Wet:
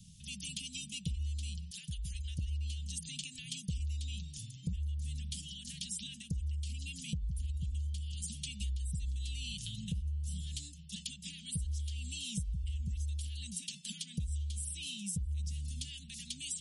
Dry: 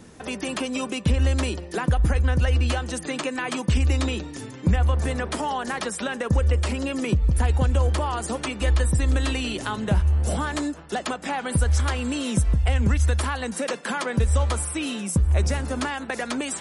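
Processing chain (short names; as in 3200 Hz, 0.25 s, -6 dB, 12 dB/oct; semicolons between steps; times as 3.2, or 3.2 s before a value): Chebyshev band-stop 180–3000 Hz, order 4; 1.71–2.39 resonant low shelf 590 Hz -13.5 dB, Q 3; compressor 5:1, threshold -31 dBFS, peak gain reduction 14 dB; gain -4.5 dB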